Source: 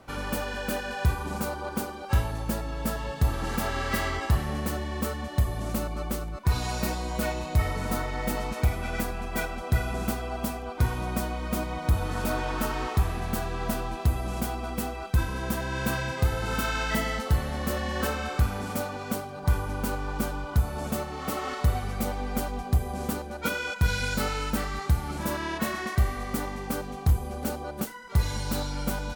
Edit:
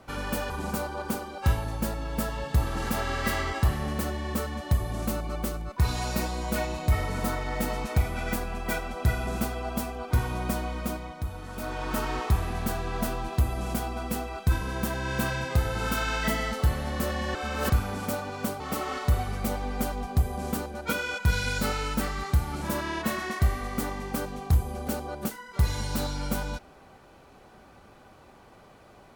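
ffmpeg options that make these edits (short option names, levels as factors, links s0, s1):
-filter_complex "[0:a]asplit=7[s0][s1][s2][s3][s4][s5][s6];[s0]atrim=end=0.502[s7];[s1]atrim=start=1.168:end=11.86,asetpts=PTS-STARTPTS,afade=t=out:st=10.202:d=0.49:silence=0.334965[s8];[s2]atrim=start=11.86:end=12.2,asetpts=PTS-STARTPTS,volume=0.335[s9];[s3]atrim=start=12.2:end=18.022,asetpts=PTS-STARTPTS,afade=t=in:d=0.49:silence=0.334965[s10];[s4]atrim=start=18.018:end=18.372,asetpts=PTS-STARTPTS,areverse[s11];[s5]atrim=start=18.368:end=19.272[s12];[s6]atrim=start=21.158[s13];[s8][s9][s10]concat=n=3:v=0:a=1[s14];[s7][s14]acrossfade=d=0.004:c1=hsin:c2=hsin[s15];[s15][s11]acrossfade=d=0.004:c1=hsin:c2=hsin[s16];[s16][s12]acrossfade=d=0.004:c1=hsin:c2=hsin[s17];[s17][s13]acrossfade=d=0.004:c1=hsin:c2=hsin"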